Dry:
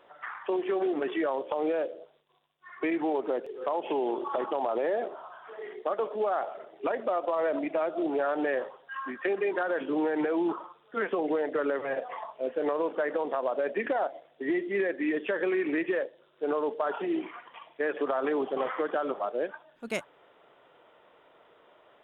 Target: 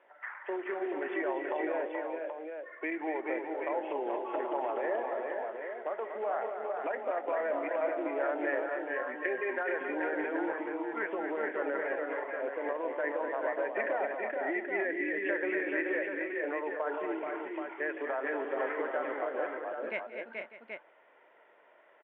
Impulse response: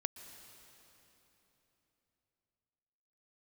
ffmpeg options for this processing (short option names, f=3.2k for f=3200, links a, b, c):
-af "highpass=450,equalizer=f=460:t=q:w=4:g=-5,equalizer=f=730:t=q:w=4:g=-4,equalizer=f=1.2k:t=q:w=4:g=-10,equalizer=f=2k:t=q:w=4:g=4,lowpass=f=2.3k:w=0.5412,lowpass=f=2.3k:w=1.3066,aecho=1:1:177|239|430|461|598|779:0.126|0.422|0.596|0.316|0.158|0.473,volume=-1dB"